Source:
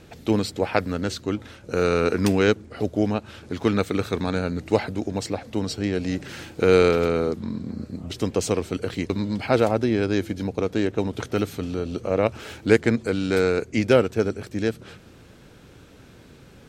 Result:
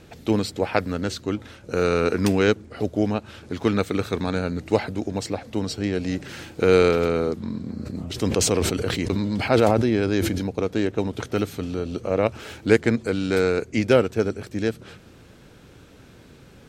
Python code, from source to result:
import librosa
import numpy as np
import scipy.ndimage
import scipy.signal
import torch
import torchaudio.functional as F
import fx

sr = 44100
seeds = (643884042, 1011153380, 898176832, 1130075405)

y = fx.sustainer(x, sr, db_per_s=25.0, at=(7.84, 10.44), fade=0.02)